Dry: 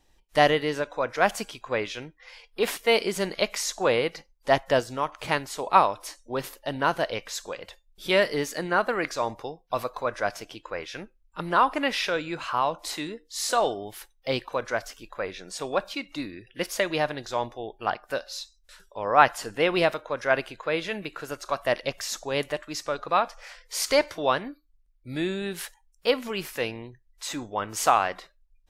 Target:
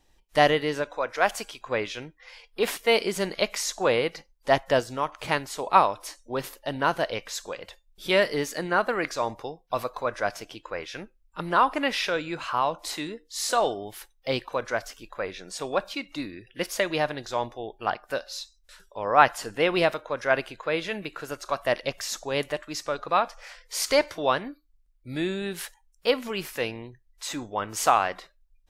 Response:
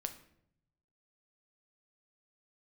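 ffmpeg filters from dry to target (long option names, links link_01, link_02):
-filter_complex "[0:a]asettb=1/sr,asplit=3[link_01][link_02][link_03];[link_01]atrim=end=0.954[link_04];[link_02]atrim=start=0.95:end=1.6,asetpts=PTS-STARTPTS,afade=type=in:duration=0.004:curve=qsin,afade=type=out:start_time=0.646:duration=0.004:curve=qsin,equalizer=frequency=150:width=0.74:gain=-10[link_05];[link_03]atrim=start=1.596[link_06];[link_04][link_05]acrossfade=duration=0.004:curve1=hsin:curve2=qsin[link_07];[link_07][link_06]acrossfade=duration=0.004:curve1=qsin:curve2=hsin"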